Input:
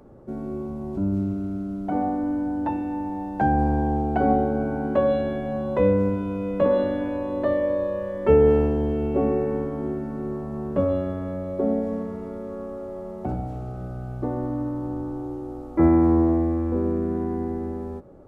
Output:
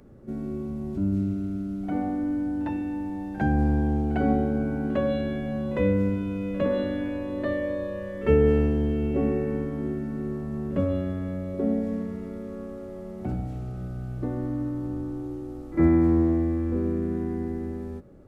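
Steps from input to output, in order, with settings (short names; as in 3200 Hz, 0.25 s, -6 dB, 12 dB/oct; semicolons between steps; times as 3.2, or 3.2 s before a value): EQ curve 210 Hz 0 dB, 900 Hz -10 dB, 1900 Hz +2 dB; pre-echo 54 ms -18 dB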